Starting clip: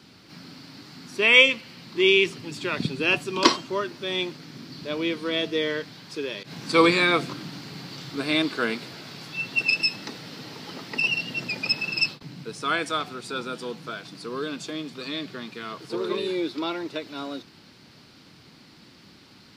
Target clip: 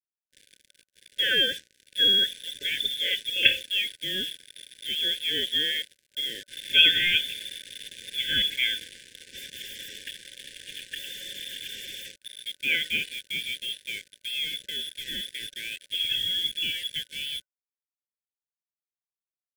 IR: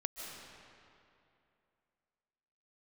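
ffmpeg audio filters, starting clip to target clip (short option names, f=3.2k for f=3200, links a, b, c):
-filter_complex "[0:a]bandreject=f=50:t=h:w=6,bandreject=f=100:t=h:w=6,bandreject=f=150:t=h:w=6,bandreject=f=200:t=h:w=6,bandreject=f=250:t=h:w=6,bandreject=f=300:t=h:w=6,bandreject=f=350:t=h:w=6,lowpass=f=3.1k:t=q:w=0.5098,lowpass=f=3.1k:t=q:w=0.6013,lowpass=f=3.1k:t=q:w=0.9,lowpass=f=3.1k:t=q:w=2.563,afreqshift=-3700,acrossover=split=250|1600[a][b][c];[b]alimiter=limit=-18dB:level=0:latency=1:release=48[d];[a][d][c]amix=inputs=3:normalize=0,acrusher=bits=5:mix=0:aa=0.5,afftfilt=real='re*(1-between(b*sr/4096,580,1500))':imag='im*(1-between(b*sr/4096,580,1500))':win_size=4096:overlap=0.75"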